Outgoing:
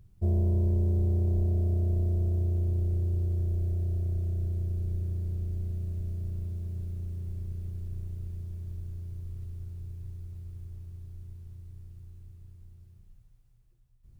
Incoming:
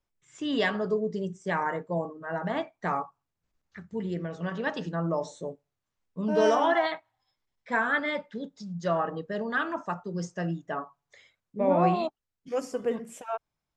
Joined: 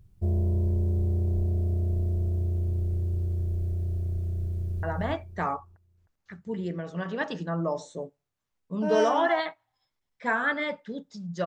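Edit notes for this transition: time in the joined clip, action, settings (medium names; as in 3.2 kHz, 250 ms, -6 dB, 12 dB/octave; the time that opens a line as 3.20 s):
outgoing
4.51–4.83 s: echo throw 310 ms, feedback 30%, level -3.5 dB
4.83 s: go over to incoming from 2.29 s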